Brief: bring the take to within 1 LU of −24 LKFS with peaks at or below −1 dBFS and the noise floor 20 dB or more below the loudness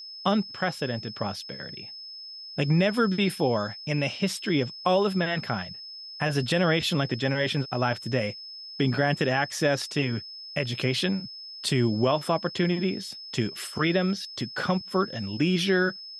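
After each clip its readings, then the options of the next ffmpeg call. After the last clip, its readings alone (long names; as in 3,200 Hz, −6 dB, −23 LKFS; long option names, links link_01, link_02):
interfering tone 5,200 Hz; level of the tone −39 dBFS; integrated loudness −26.5 LKFS; sample peak −11.0 dBFS; target loudness −24.0 LKFS
→ -af "bandreject=frequency=5200:width=30"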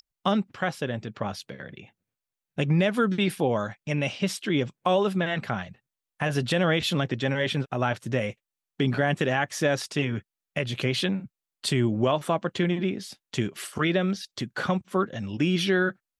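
interfering tone none found; integrated loudness −27.0 LKFS; sample peak −11.5 dBFS; target loudness −24.0 LKFS
→ -af "volume=3dB"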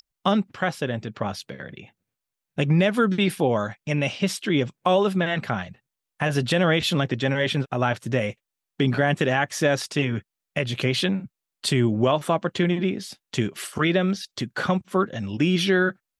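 integrated loudness −24.0 LKFS; sample peak −8.5 dBFS; background noise floor −86 dBFS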